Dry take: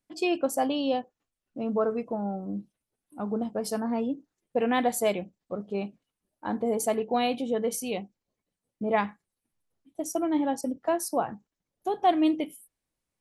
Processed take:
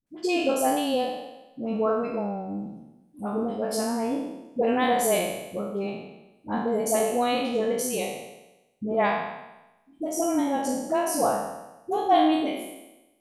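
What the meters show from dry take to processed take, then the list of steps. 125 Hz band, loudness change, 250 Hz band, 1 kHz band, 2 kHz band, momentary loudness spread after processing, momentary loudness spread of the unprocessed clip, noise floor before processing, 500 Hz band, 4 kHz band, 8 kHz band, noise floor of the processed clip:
+2.0 dB, +2.5 dB, +1.5 dB, +4.0 dB, +4.0 dB, 14 LU, 12 LU, below −85 dBFS, +3.0 dB, +4.0 dB, +5.5 dB, −62 dBFS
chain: peak hold with a decay on every bin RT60 1.00 s
all-pass dispersion highs, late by 67 ms, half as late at 520 Hz

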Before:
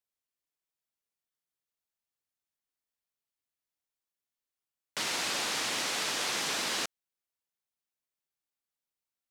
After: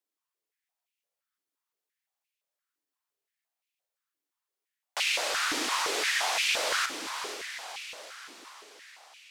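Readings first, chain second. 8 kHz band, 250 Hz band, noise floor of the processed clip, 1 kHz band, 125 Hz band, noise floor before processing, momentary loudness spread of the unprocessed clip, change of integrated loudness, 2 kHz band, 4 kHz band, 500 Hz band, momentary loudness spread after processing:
+1.5 dB, +1.0 dB, below −85 dBFS, +5.5 dB, below −10 dB, below −85 dBFS, 5 LU, +2.0 dB, +6.0 dB, +3.0 dB, +5.0 dB, 18 LU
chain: feedback delay with all-pass diffusion 496 ms, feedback 57%, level −8 dB
high-pass on a step sequencer 5.8 Hz 300–2,500 Hz

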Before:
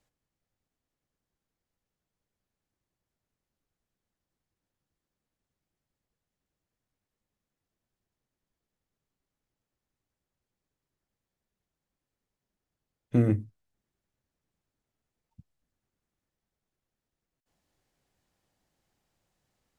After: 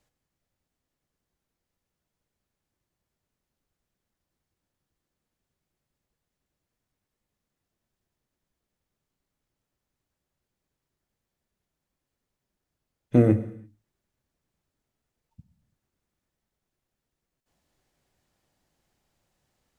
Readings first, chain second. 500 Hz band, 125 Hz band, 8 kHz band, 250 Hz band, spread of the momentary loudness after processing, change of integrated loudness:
+8.5 dB, +3.0 dB, can't be measured, +5.5 dB, 12 LU, +5.0 dB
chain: reverb whose tail is shaped and stops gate 360 ms falling, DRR 11 dB
dynamic equaliser 560 Hz, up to +6 dB, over −40 dBFS, Q 0.84
level +3 dB

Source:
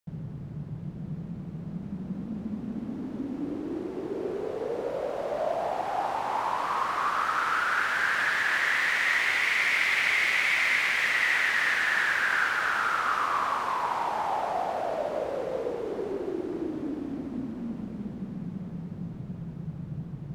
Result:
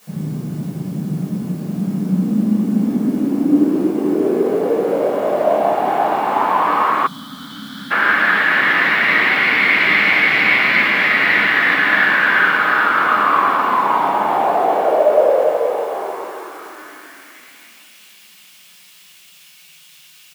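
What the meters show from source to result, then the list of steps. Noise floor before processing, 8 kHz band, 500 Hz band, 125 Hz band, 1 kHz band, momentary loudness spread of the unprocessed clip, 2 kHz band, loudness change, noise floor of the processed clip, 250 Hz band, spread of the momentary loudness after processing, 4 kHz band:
−40 dBFS, can't be measured, +14.5 dB, +11.0 dB, +12.0 dB, 15 LU, +11.0 dB, +12.5 dB, −46 dBFS, +15.0 dB, 13 LU, +9.5 dB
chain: stylus tracing distortion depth 0.043 ms
low-pass filter 3,900 Hz 24 dB per octave
in parallel at −4.5 dB: bit-depth reduction 8 bits, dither triangular
on the sum: high-pass filter sweep 250 Hz → 2,800 Hz, 0:14.20–0:17.90
on a send: single-tap delay 577 ms −15 dB
on the sum: rectangular room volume 660 cubic metres, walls furnished, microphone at 5.7 metres
gain on a spectral selection 0:07.07–0:07.91, 300–3,000 Hz −25 dB
level −1 dB

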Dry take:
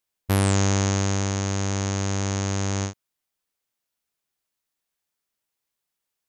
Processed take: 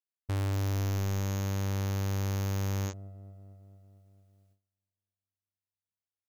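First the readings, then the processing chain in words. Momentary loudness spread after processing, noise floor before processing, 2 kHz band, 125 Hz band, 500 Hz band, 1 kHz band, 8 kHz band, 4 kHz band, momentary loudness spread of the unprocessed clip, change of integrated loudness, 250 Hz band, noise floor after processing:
13 LU, −83 dBFS, −11.5 dB, −5.5 dB, −10.0 dB, −11.0 dB, −15.5 dB, −12.0 dB, 5 LU, −7.5 dB, −10.5 dB, below −85 dBFS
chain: delay with a low-pass on its return 226 ms, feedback 68%, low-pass 430 Hz, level −17 dB
noise gate with hold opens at −56 dBFS
gain into a clipping stage and back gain 27 dB
level −1.5 dB

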